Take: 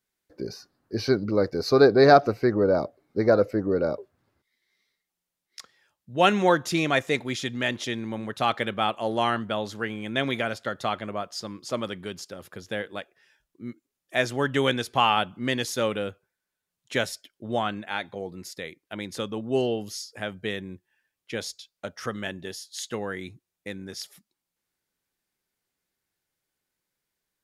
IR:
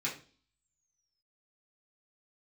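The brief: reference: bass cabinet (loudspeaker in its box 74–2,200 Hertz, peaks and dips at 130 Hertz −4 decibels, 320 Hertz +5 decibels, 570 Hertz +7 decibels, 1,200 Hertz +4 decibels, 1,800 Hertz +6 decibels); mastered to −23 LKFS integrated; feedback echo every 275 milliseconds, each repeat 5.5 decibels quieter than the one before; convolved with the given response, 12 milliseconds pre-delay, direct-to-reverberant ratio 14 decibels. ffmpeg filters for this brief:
-filter_complex "[0:a]aecho=1:1:275|550|825|1100|1375|1650|1925:0.531|0.281|0.149|0.079|0.0419|0.0222|0.0118,asplit=2[link_01][link_02];[1:a]atrim=start_sample=2205,adelay=12[link_03];[link_02][link_03]afir=irnorm=-1:irlink=0,volume=-18.5dB[link_04];[link_01][link_04]amix=inputs=2:normalize=0,highpass=frequency=74:width=0.5412,highpass=frequency=74:width=1.3066,equalizer=frequency=130:width_type=q:width=4:gain=-4,equalizer=frequency=320:width_type=q:width=4:gain=5,equalizer=frequency=570:width_type=q:width=4:gain=7,equalizer=frequency=1200:width_type=q:width=4:gain=4,equalizer=frequency=1800:width_type=q:width=4:gain=6,lowpass=frequency=2200:width=0.5412,lowpass=frequency=2200:width=1.3066,volume=-1.5dB"

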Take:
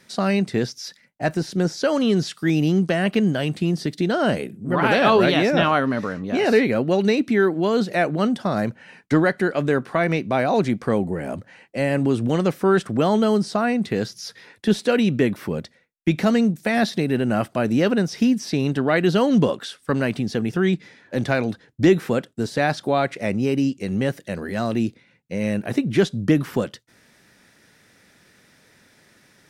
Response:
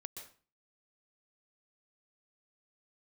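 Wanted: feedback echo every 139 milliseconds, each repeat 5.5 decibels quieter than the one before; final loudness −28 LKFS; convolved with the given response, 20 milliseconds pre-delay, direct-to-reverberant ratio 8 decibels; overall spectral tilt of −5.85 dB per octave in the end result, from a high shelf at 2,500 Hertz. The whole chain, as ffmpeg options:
-filter_complex "[0:a]highshelf=frequency=2500:gain=-4,aecho=1:1:139|278|417|556|695|834|973:0.531|0.281|0.149|0.079|0.0419|0.0222|0.0118,asplit=2[link_01][link_02];[1:a]atrim=start_sample=2205,adelay=20[link_03];[link_02][link_03]afir=irnorm=-1:irlink=0,volume=-4dB[link_04];[link_01][link_04]amix=inputs=2:normalize=0,volume=-8dB"

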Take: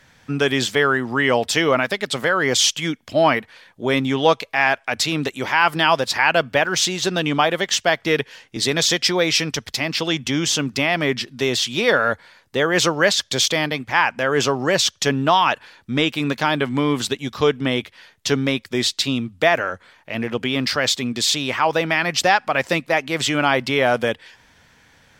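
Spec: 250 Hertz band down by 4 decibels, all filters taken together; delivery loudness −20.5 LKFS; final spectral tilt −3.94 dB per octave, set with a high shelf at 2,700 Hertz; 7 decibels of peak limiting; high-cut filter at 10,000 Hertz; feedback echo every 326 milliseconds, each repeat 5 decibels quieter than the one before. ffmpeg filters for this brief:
ffmpeg -i in.wav -af "lowpass=10000,equalizer=frequency=250:width_type=o:gain=-5,highshelf=frequency=2700:gain=-8.5,alimiter=limit=-11dB:level=0:latency=1,aecho=1:1:326|652|978|1304|1630|1956|2282:0.562|0.315|0.176|0.0988|0.0553|0.031|0.0173,volume=2dB" out.wav

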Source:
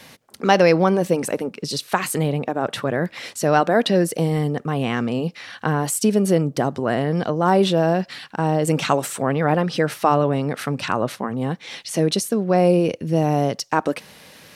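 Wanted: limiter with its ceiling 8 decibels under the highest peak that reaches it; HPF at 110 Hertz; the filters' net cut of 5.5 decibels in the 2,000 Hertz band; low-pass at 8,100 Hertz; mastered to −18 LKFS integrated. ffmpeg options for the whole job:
ffmpeg -i in.wav -af "highpass=110,lowpass=8100,equalizer=frequency=2000:width_type=o:gain=-7.5,volume=6dB,alimiter=limit=-5.5dB:level=0:latency=1" out.wav

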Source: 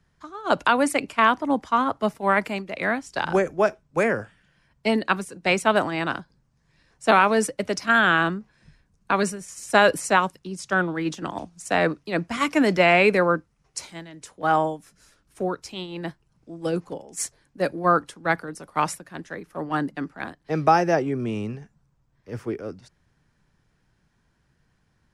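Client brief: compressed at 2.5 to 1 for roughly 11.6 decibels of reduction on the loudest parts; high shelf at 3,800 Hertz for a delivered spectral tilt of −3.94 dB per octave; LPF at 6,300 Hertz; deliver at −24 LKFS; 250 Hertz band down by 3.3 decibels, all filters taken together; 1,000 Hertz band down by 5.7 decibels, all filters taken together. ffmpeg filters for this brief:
ffmpeg -i in.wav -af "lowpass=6300,equalizer=frequency=250:width_type=o:gain=-4,equalizer=frequency=1000:width_type=o:gain=-8,highshelf=frequency=3800:gain=4.5,acompressor=threshold=-33dB:ratio=2.5,volume=11dB" out.wav

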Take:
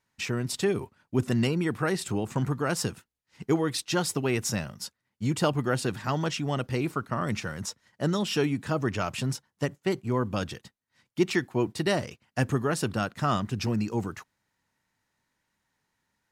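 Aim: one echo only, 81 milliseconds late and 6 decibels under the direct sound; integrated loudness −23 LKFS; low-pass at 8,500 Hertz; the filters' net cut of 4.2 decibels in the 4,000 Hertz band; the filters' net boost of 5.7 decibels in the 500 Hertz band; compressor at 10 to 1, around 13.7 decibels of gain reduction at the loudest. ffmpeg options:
ffmpeg -i in.wav -af "lowpass=8500,equalizer=frequency=500:width_type=o:gain=7.5,equalizer=frequency=4000:width_type=o:gain=-6,acompressor=threshold=-30dB:ratio=10,aecho=1:1:81:0.501,volume=12dB" out.wav

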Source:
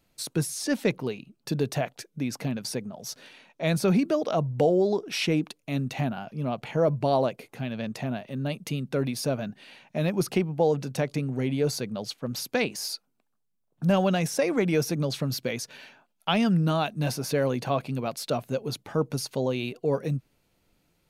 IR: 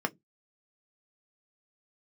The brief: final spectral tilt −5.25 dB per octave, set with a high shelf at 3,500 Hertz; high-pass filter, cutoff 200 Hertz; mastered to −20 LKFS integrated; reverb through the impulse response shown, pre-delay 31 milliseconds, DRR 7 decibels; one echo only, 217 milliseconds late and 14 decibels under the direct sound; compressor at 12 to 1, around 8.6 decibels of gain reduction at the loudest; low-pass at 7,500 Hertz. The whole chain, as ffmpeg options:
-filter_complex "[0:a]highpass=200,lowpass=7500,highshelf=frequency=3500:gain=-3.5,acompressor=threshold=-27dB:ratio=12,aecho=1:1:217:0.2,asplit=2[link_01][link_02];[1:a]atrim=start_sample=2205,adelay=31[link_03];[link_02][link_03]afir=irnorm=-1:irlink=0,volume=-14.5dB[link_04];[link_01][link_04]amix=inputs=2:normalize=0,volume=13dB"

